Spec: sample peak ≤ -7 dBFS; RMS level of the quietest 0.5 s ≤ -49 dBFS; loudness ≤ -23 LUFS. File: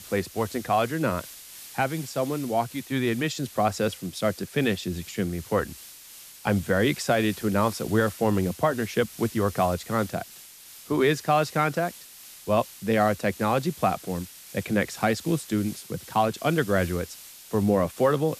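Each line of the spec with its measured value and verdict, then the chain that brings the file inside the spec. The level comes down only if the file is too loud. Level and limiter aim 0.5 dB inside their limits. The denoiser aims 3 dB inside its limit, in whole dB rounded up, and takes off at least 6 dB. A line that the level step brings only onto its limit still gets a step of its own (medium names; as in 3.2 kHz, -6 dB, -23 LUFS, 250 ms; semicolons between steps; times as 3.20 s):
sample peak -10.0 dBFS: pass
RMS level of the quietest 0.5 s -47 dBFS: fail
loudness -26.0 LUFS: pass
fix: noise reduction 6 dB, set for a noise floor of -47 dBFS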